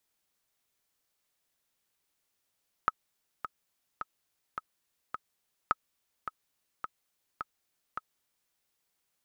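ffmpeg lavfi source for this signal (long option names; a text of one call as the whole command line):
ffmpeg -f lavfi -i "aevalsrc='pow(10,(-11.5-10.5*gte(mod(t,5*60/106),60/106))/20)*sin(2*PI*1280*mod(t,60/106))*exp(-6.91*mod(t,60/106)/0.03)':duration=5.66:sample_rate=44100" out.wav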